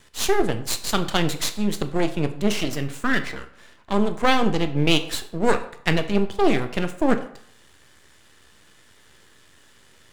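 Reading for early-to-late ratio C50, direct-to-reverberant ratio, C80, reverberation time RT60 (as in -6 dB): 12.5 dB, 8.0 dB, 15.5 dB, 0.60 s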